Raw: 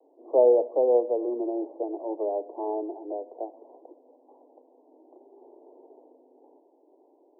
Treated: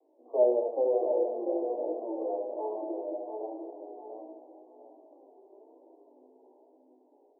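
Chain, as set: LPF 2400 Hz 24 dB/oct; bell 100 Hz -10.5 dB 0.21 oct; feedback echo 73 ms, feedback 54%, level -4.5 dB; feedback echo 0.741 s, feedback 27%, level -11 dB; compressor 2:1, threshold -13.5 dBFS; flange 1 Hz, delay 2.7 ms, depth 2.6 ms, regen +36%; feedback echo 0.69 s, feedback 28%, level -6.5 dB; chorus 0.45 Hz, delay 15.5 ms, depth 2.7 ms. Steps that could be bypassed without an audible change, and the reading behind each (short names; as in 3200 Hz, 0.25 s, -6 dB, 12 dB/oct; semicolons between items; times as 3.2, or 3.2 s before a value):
LPF 2400 Hz: input band ends at 1100 Hz; bell 100 Hz: input band starts at 230 Hz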